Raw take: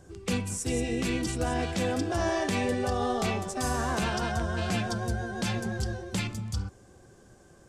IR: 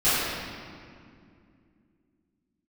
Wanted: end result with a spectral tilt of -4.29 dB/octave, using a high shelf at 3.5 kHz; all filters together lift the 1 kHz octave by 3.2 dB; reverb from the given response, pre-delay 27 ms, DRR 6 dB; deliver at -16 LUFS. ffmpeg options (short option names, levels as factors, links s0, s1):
-filter_complex "[0:a]equalizer=f=1000:t=o:g=4,highshelf=f=3500:g=5,asplit=2[s0][s1];[1:a]atrim=start_sample=2205,adelay=27[s2];[s1][s2]afir=irnorm=-1:irlink=0,volume=0.0631[s3];[s0][s3]amix=inputs=2:normalize=0,volume=3.76"